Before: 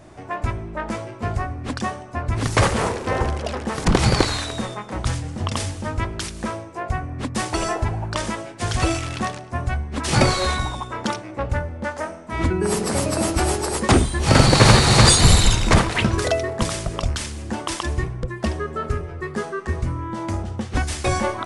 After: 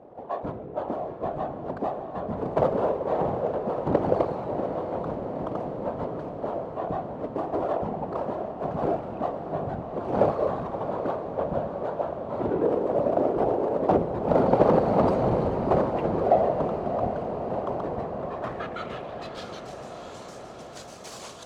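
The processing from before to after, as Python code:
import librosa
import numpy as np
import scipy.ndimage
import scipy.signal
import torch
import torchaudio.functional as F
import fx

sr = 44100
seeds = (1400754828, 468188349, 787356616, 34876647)

p1 = scipy.ndimage.median_filter(x, 25, mode='constant')
p2 = fx.low_shelf(p1, sr, hz=74.0, db=7.5)
p3 = fx.whisperise(p2, sr, seeds[0])
p4 = 10.0 ** (-12.0 / 20.0) * (np.abs((p3 / 10.0 ** (-12.0 / 20.0) + 3.0) % 4.0 - 2.0) - 1.0)
p5 = p3 + F.gain(torch.from_numpy(p4), -6.0).numpy()
p6 = fx.filter_sweep_bandpass(p5, sr, from_hz=590.0, to_hz=6500.0, start_s=17.78, end_s=19.73, q=1.8)
y = fx.echo_diffused(p6, sr, ms=682, feedback_pct=72, wet_db=-9.0)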